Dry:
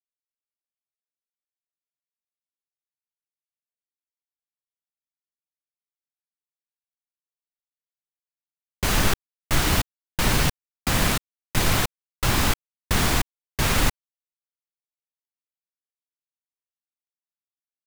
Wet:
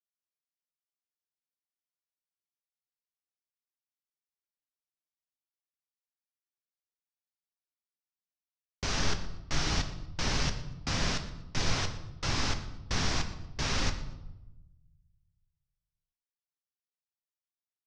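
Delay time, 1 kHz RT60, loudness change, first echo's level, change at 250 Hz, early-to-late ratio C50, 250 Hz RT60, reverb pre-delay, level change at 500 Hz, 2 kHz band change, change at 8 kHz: 0.119 s, 0.90 s, -9.0 dB, -18.5 dB, -9.5 dB, 10.5 dB, 1.5 s, 7 ms, -9.5 dB, -9.5 dB, -10.0 dB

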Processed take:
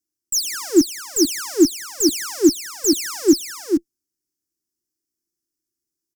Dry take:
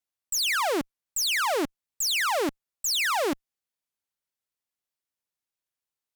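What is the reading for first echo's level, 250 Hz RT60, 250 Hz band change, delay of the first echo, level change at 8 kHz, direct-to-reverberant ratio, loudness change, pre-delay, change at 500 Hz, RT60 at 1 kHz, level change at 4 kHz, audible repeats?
-5.0 dB, none, +18.0 dB, 0.44 s, +8.5 dB, none, +6.5 dB, none, +9.0 dB, none, +2.5 dB, 1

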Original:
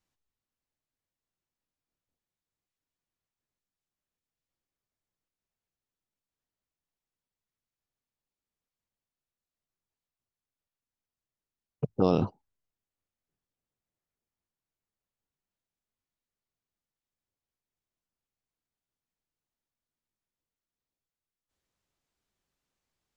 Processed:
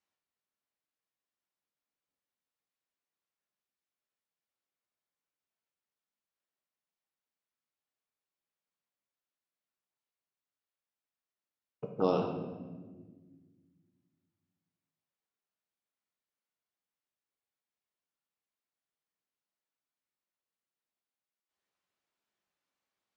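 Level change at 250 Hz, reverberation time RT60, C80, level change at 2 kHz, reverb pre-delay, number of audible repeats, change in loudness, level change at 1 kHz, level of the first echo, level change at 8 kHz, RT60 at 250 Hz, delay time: -6.0 dB, 1.5 s, 7.0 dB, -1.5 dB, 5 ms, none, -5.0 dB, -1.5 dB, none, n/a, 2.5 s, none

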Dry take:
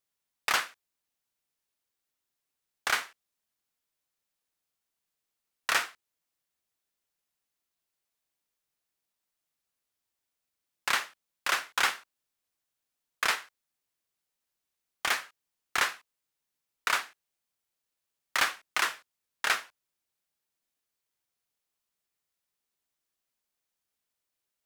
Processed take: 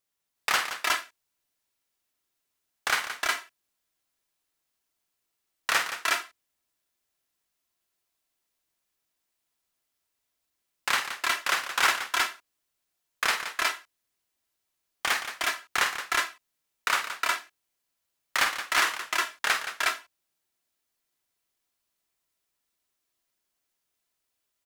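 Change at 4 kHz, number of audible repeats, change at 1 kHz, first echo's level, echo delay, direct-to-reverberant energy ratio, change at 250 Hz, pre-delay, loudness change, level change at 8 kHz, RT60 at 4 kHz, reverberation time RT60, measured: +4.5 dB, 3, +5.0 dB, -9.5 dB, 48 ms, none, +5.0 dB, none, +2.5 dB, +4.5 dB, none, none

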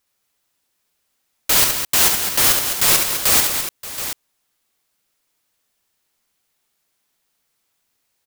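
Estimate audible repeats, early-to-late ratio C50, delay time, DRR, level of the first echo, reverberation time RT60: 4, none, 68 ms, none, -4.0 dB, none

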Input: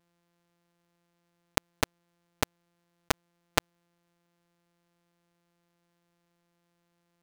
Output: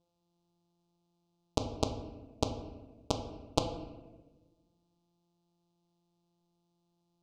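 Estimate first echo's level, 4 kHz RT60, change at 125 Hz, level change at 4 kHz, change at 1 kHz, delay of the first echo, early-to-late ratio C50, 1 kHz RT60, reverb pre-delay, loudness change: none, 0.80 s, +2.5 dB, -5.0 dB, -3.5 dB, none, 8.0 dB, 1.1 s, 10 ms, -4.0 dB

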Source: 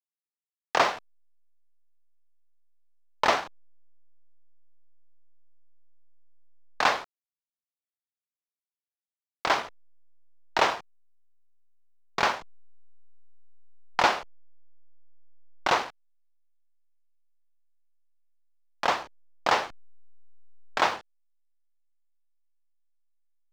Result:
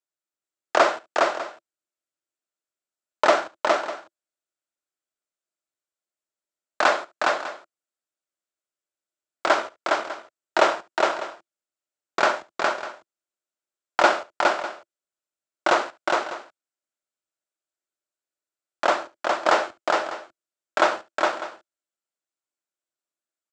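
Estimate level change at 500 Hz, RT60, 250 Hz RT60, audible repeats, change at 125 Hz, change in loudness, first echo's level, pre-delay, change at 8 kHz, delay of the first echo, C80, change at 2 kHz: +10.0 dB, none, none, 3, n/a, +3.5 dB, -19.0 dB, none, +4.5 dB, 71 ms, none, +5.5 dB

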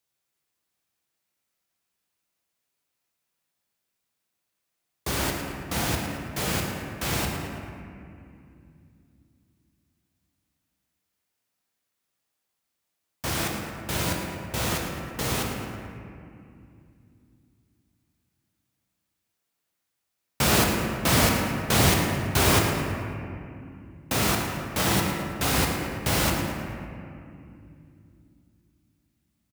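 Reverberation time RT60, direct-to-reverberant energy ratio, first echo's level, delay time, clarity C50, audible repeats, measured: 2.6 s, 0.0 dB, -10.0 dB, 0.11 s, 2.0 dB, 1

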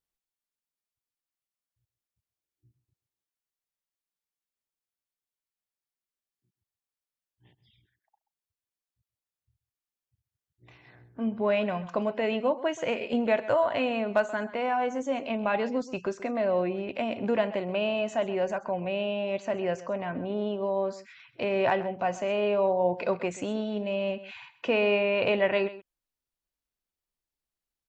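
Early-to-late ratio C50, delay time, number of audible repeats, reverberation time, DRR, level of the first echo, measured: none, 0.131 s, 1, none, none, -16.5 dB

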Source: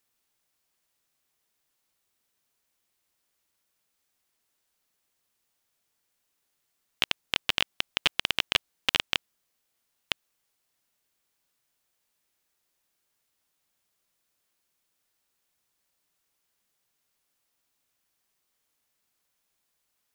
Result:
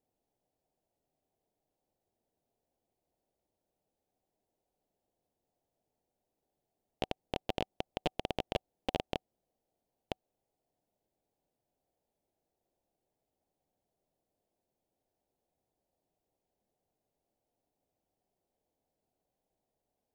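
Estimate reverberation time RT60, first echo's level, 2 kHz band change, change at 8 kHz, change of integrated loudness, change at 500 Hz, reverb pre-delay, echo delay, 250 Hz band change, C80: none, none, -17.0 dB, -17.0 dB, -11.0 dB, +5.5 dB, none, none, +4.0 dB, none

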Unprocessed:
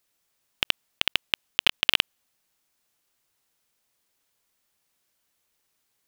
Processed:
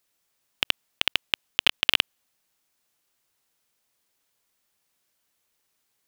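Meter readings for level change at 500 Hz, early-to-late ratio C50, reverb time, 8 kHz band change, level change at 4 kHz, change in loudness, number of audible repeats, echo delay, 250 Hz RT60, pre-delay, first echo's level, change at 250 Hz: 0.0 dB, none, none, 0.0 dB, 0.0 dB, 0.0 dB, none, none, none, none, none, -0.5 dB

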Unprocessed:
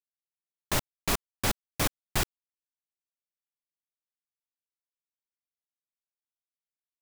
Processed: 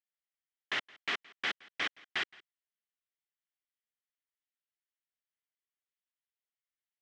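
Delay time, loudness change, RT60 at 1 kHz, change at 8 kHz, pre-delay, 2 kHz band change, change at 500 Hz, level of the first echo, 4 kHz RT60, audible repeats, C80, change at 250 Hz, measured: 0.169 s, -5.5 dB, none, -21.5 dB, none, +1.5 dB, -12.5 dB, -23.5 dB, none, 1, none, -16.0 dB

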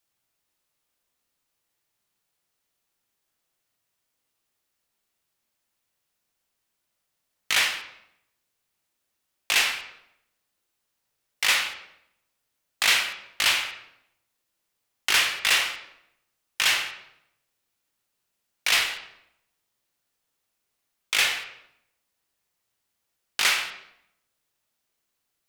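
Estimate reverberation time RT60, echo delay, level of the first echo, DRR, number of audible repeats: 0.80 s, none, none, 3.0 dB, none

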